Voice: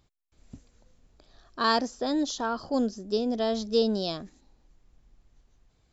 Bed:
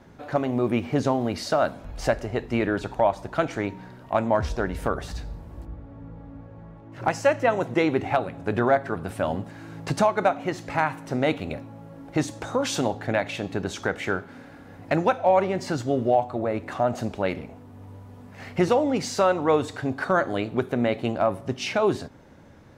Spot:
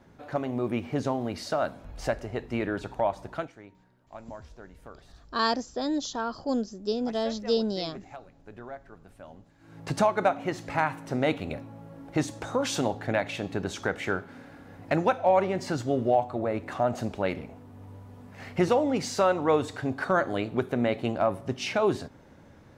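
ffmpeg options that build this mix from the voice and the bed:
ffmpeg -i stem1.wav -i stem2.wav -filter_complex "[0:a]adelay=3750,volume=-1.5dB[link_01];[1:a]volume=13dB,afade=type=out:start_time=3.31:duration=0.21:silence=0.16788,afade=type=in:start_time=9.58:duration=0.41:silence=0.11885[link_02];[link_01][link_02]amix=inputs=2:normalize=0" out.wav

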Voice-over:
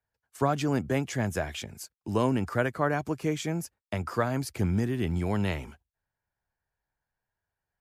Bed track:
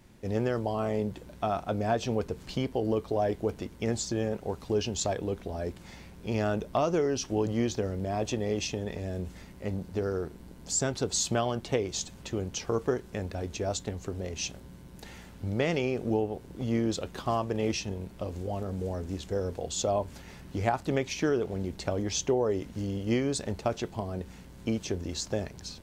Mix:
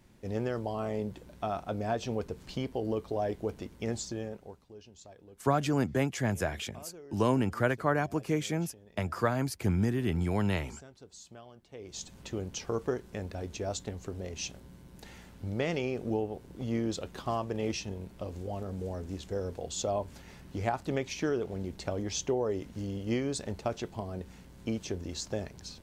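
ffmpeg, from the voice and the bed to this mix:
ffmpeg -i stem1.wav -i stem2.wav -filter_complex "[0:a]adelay=5050,volume=-1dB[link_01];[1:a]volume=15dB,afade=type=out:start_time=3.94:duration=0.72:silence=0.11885,afade=type=in:start_time=11.73:duration=0.45:silence=0.112202[link_02];[link_01][link_02]amix=inputs=2:normalize=0" out.wav

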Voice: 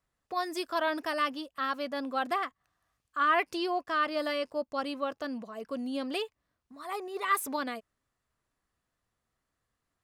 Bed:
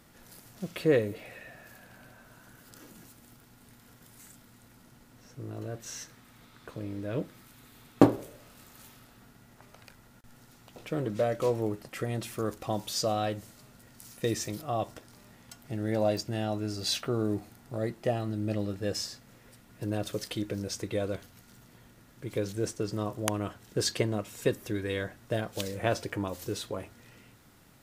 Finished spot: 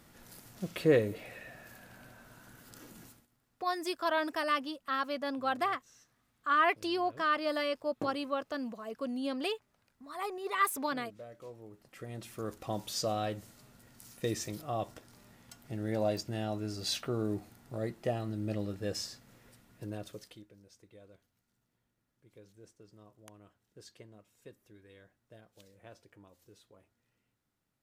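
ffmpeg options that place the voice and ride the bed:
ffmpeg -i stem1.wav -i stem2.wav -filter_complex "[0:a]adelay=3300,volume=-1dB[link_01];[1:a]volume=15.5dB,afade=type=out:start_time=3.07:duration=0.2:silence=0.105925,afade=type=in:start_time=11.69:duration=1.12:silence=0.149624,afade=type=out:start_time=19.44:duration=1.04:silence=0.0891251[link_02];[link_01][link_02]amix=inputs=2:normalize=0" out.wav

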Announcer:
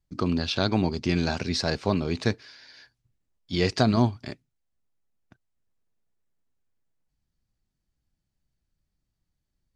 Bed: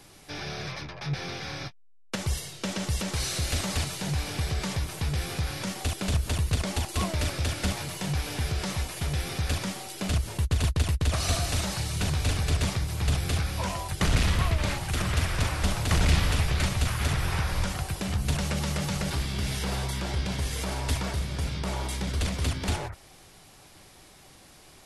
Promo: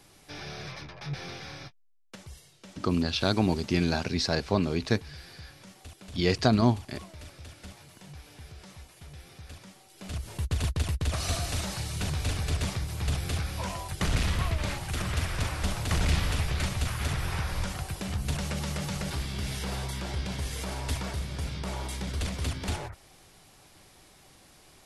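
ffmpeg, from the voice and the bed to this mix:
ffmpeg -i stem1.wav -i stem2.wav -filter_complex "[0:a]adelay=2650,volume=-1dB[link_01];[1:a]volume=9.5dB,afade=type=out:start_time=1.3:duration=0.98:silence=0.223872,afade=type=in:start_time=9.9:duration=0.61:silence=0.199526[link_02];[link_01][link_02]amix=inputs=2:normalize=0" out.wav

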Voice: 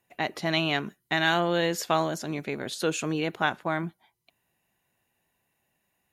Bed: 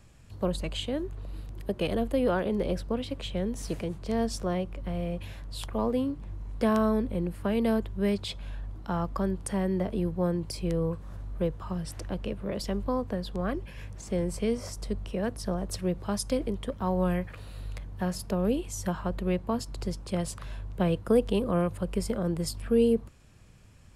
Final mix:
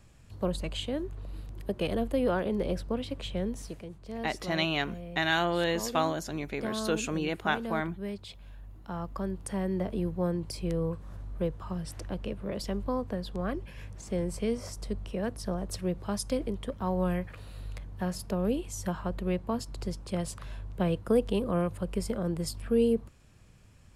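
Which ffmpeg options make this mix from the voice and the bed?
ffmpeg -i stem1.wav -i stem2.wav -filter_complex "[0:a]adelay=4050,volume=-3dB[link_01];[1:a]volume=6.5dB,afade=type=out:start_time=3.49:duration=0.26:silence=0.375837,afade=type=in:start_time=8.55:duration=1.3:silence=0.398107[link_02];[link_01][link_02]amix=inputs=2:normalize=0" out.wav

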